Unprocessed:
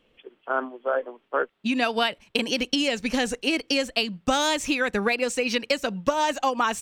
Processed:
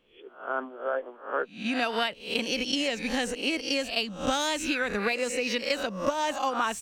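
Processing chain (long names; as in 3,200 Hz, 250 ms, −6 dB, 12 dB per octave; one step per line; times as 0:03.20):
peak hold with a rise ahead of every peak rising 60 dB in 0.41 s
level −5.5 dB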